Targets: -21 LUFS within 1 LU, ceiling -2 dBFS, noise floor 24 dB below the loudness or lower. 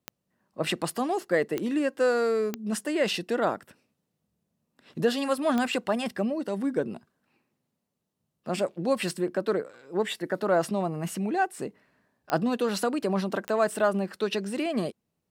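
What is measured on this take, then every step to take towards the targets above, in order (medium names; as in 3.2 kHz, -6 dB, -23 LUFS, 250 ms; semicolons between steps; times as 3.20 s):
clicks found 6; loudness -28.0 LUFS; peak level -11.0 dBFS; loudness target -21.0 LUFS
-> de-click; trim +7 dB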